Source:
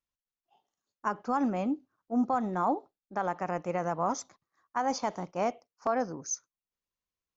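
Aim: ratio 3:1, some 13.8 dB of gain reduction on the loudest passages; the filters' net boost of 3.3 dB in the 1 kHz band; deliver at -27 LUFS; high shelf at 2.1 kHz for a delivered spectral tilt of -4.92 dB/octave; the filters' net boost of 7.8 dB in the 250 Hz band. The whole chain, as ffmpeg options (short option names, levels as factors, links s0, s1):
-af "equalizer=f=250:t=o:g=8.5,equalizer=f=1000:t=o:g=5,highshelf=f=2100:g=-6.5,acompressor=threshold=0.02:ratio=3,volume=3.16"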